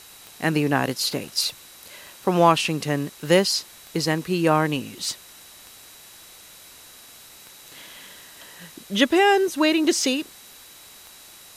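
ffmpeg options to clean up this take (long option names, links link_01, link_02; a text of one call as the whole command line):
ffmpeg -i in.wav -af "adeclick=threshold=4,bandreject=frequency=3900:width=30,afwtdn=0.0056" out.wav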